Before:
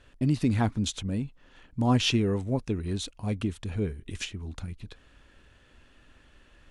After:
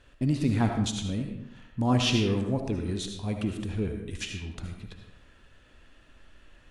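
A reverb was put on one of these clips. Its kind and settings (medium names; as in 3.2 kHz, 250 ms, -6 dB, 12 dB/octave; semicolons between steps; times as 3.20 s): algorithmic reverb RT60 0.82 s, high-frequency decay 0.7×, pre-delay 35 ms, DRR 3.5 dB; trim -1 dB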